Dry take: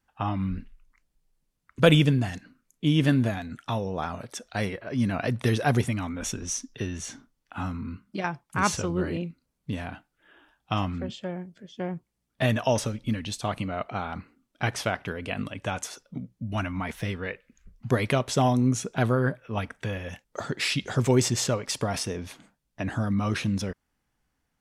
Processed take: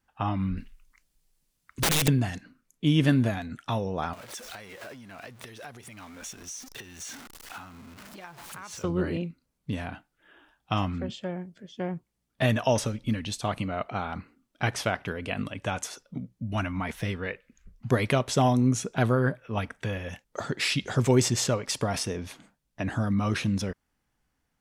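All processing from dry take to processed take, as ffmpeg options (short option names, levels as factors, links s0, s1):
-filter_complex "[0:a]asettb=1/sr,asplit=3[s0][s1][s2];[s0]atrim=end=0.574[s3];[s1]atrim=start=0.57:end=2.08,asetpts=PTS-STARTPTS,afade=t=in:d=0.004:c=qsin,afade=t=out:st=1.506:d=0.004:c=qsin,highshelf=f=2400:g=10,acompressor=threshold=0.0891:ratio=2:attack=3.2:release=140:knee=1:detection=peak,aeval=exprs='(mod(8.41*val(0)+1,2)-1)/8.41':c=same[s4];[s2]atrim=start=2.076[s5];[s3][s4]acrossfade=d=0.004:c1=hsin:c2=qsin[s6];[s6][s5]acrossfade=d=0.004:c1=qsin:c2=hsin,asettb=1/sr,asplit=3[s7][s8][s9];[s7]atrim=end=4.134[s10];[s8]atrim=start=4.13:end=8.84,asetpts=PTS-STARTPTS,afade=t=in:d=0.004:c=qsin,afade=t=out:st=4.706:d=0.004:c=qsin,aeval=exprs='val(0)+0.5*0.0158*sgn(val(0))':c=same,acompressor=threshold=0.0178:ratio=12:attack=3.2:release=140:knee=1:detection=peak,lowshelf=f=400:g=-11.5[s11];[s9]atrim=start=8.836[s12];[s10][s11]acrossfade=d=0.004:c1=hsin:c2=qsin[s13];[s13][s12]acrossfade=d=0.004:c1=qsin:c2=hsin"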